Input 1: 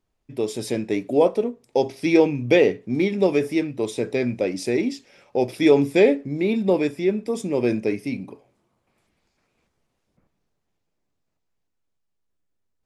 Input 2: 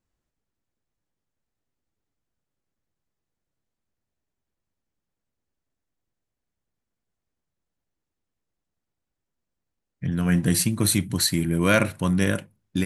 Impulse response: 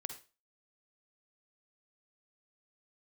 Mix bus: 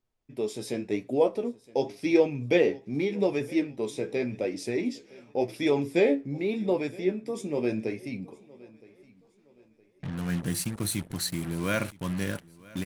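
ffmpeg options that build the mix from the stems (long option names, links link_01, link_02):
-filter_complex "[0:a]flanger=delay=7.9:depth=6.9:regen=44:speed=0.88:shape=sinusoidal,volume=-2.5dB,asplit=2[link_01][link_02];[link_02]volume=-22.5dB[link_03];[1:a]acrusher=bits=4:mix=0:aa=0.5,volume=-9dB,asplit=2[link_04][link_05];[link_05]volume=-23dB[link_06];[link_03][link_06]amix=inputs=2:normalize=0,aecho=0:1:966|1932|2898|3864|4830:1|0.34|0.116|0.0393|0.0134[link_07];[link_01][link_04][link_07]amix=inputs=3:normalize=0"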